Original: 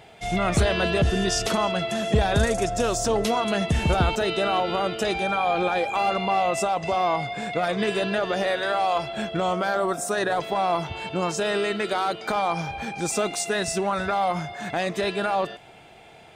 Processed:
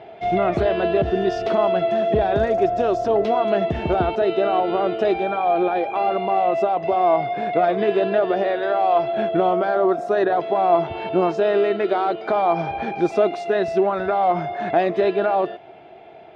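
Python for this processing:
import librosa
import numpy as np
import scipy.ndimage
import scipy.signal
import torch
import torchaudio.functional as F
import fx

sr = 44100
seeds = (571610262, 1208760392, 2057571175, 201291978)

y = scipy.signal.sosfilt(scipy.signal.butter(2, 54.0, 'highpass', fs=sr, output='sos'), x)
y = fx.low_shelf(y, sr, hz=210.0, db=-5.0)
y = fx.rider(y, sr, range_db=10, speed_s=0.5)
y = fx.air_absorb(y, sr, metres=300.0)
y = fx.small_body(y, sr, hz=(370.0, 650.0), ring_ms=25, db=11)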